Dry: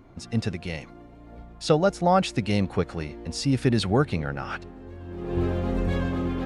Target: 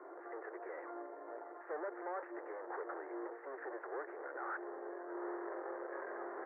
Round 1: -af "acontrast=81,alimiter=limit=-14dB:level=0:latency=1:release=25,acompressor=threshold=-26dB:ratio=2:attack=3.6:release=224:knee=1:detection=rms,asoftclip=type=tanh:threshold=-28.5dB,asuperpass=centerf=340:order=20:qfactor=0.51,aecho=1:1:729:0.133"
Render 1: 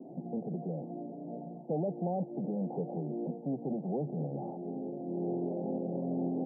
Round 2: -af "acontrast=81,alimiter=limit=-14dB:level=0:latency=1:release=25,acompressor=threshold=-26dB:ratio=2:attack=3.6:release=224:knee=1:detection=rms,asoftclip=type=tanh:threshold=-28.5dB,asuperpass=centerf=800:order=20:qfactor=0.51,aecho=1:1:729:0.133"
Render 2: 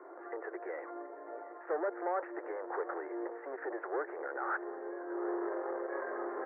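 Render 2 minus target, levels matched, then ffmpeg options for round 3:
soft clip: distortion -6 dB
-af "acontrast=81,alimiter=limit=-14dB:level=0:latency=1:release=25,acompressor=threshold=-26dB:ratio=2:attack=3.6:release=224:knee=1:detection=rms,asoftclip=type=tanh:threshold=-38dB,asuperpass=centerf=800:order=20:qfactor=0.51,aecho=1:1:729:0.133"

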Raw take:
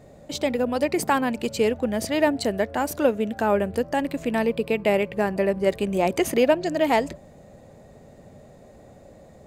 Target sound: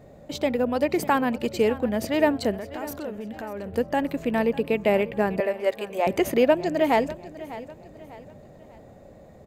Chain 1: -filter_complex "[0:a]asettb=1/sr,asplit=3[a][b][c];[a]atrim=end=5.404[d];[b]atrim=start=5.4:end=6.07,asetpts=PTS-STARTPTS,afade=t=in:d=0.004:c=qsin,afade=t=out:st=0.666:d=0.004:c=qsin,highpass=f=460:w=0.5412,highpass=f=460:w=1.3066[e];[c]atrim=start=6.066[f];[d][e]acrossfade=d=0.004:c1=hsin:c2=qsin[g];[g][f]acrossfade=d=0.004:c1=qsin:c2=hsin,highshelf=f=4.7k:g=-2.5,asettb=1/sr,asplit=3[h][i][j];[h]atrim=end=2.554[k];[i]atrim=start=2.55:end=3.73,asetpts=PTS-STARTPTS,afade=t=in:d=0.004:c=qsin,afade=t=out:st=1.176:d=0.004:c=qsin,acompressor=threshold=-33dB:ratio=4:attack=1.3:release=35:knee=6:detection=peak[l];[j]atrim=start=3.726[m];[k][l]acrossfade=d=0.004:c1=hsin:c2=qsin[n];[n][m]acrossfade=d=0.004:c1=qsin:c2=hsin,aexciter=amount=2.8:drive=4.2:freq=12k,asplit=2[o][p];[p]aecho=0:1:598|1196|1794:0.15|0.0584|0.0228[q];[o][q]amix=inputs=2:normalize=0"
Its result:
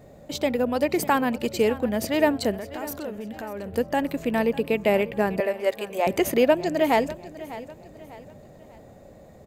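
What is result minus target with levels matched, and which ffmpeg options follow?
8000 Hz band +4.0 dB
-filter_complex "[0:a]asettb=1/sr,asplit=3[a][b][c];[a]atrim=end=5.404[d];[b]atrim=start=5.4:end=6.07,asetpts=PTS-STARTPTS,afade=t=in:d=0.004:c=qsin,afade=t=out:st=0.666:d=0.004:c=qsin,highpass=f=460:w=0.5412,highpass=f=460:w=1.3066[e];[c]atrim=start=6.066[f];[d][e]acrossfade=d=0.004:c1=hsin:c2=qsin[g];[g][f]acrossfade=d=0.004:c1=qsin:c2=hsin,highshelf=f=4.7k:g=-8.5,asettb=1/sr,asplit=3[h][i][j];[h]atrim=end=2.554[k];[i]atrim=start=2.55:end=3.73,asetpts=PTS-STARTPTS,afade=t=in:d=0.004:c=qsin,afade=t=out:st=1.176:d=0.004:c=qsin,acompressor=threshold=-33dB:ratio=4:attack=1.3:release=35:knee=6:detection=peak[l];[j]atrim=start=3.726[m];[k][l]acrossfade=d=0.004:c1=hsin:c2=qsin[n];[n][m]acrossfade=d=0.004:c1=qsin:c2=hsin,aexciter=amount=2.8:drive=4.2:freq=12k,asplit=2[o][p];[p]aecho=0:1:598|1196|1794:0.15|0.0584|0.0228[q];[o][q]amix=inputs=2:normalize=0"

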